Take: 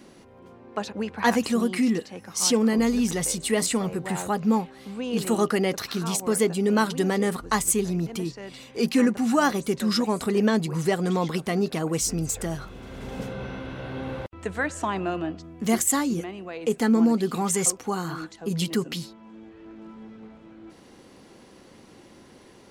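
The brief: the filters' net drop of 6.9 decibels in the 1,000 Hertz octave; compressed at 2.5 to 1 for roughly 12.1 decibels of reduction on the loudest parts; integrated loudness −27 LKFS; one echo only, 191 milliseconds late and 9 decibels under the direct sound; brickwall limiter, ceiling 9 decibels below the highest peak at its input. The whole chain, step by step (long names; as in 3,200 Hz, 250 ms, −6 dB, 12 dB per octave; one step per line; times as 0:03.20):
parametric band 1,000 Hz −9 dB
downward compressor 2.5 to 1, threshold −36 dBFS
brickwall limiter −27 dBFS
single-tap delay 191 ms −9 dB
level +9.5 dB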